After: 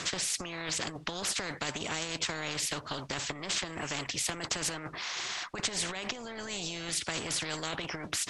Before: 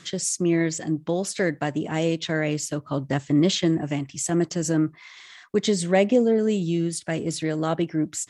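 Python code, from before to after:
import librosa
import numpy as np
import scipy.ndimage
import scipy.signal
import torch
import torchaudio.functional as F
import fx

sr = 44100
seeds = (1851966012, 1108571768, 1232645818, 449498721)

y = fx.over_compress(x, sr, threshold_db=-27.0, ratio=-1.0)
y = scipy.signal.sosfilt(scipy.signal.butter(2, 6000.0, 'lowpass', fs=sr, output='sos'), y)
y = fx.spectral_comp(y, sr, ratio=4.0)
y = y * librosa.db_to_amplitude(-4.5)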